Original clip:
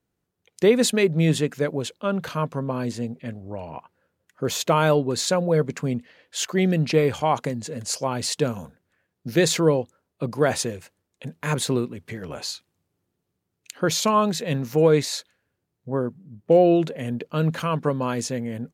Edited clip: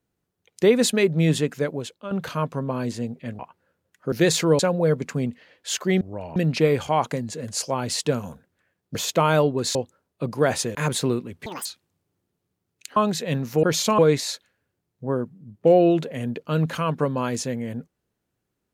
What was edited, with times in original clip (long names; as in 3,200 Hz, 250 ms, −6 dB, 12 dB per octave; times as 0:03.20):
0:01.56–0:02.11: fade out, to −10.5 dB
0:03.39–0:03.74: move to 0:06.69
0:04.47–0:05.27: swap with 0:09.28–0:09.75
0:10.75–0:11.41: remove
0:12.12–0:12.50: play speed 196%
0:13.81–0:14.16: move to 0:14.83